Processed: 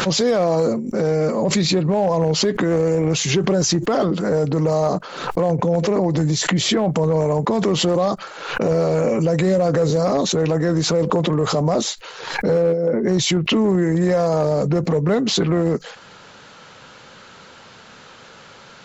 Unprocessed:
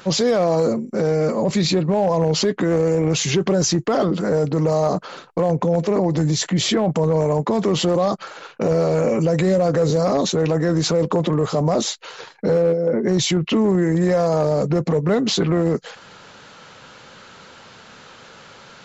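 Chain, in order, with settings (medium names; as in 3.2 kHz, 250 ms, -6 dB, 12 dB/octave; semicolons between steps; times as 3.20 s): swell ahead of each attack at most 64 dB/s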